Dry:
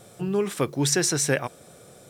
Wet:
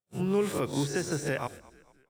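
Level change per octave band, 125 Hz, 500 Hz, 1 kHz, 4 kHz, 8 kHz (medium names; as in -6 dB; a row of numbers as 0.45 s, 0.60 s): -4.5 dB, -3.5 dB, -3.0 dB, -11.0 dB, -14.5 dB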